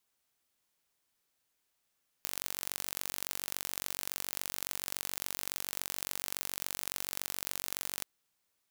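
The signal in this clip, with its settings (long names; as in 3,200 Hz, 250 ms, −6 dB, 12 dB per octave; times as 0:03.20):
impulse train 47.1 per second, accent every 2, −7.5 dBFS 5.78 s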